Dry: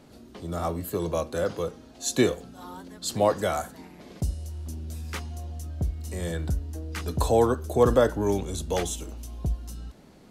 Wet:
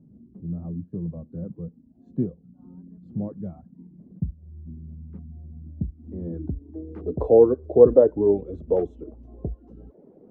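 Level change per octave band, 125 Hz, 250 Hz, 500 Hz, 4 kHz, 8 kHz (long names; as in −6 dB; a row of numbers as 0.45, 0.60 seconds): −2.0 dB, +2.0 dB, +5.0 dB, below −35 dB, below −40 dB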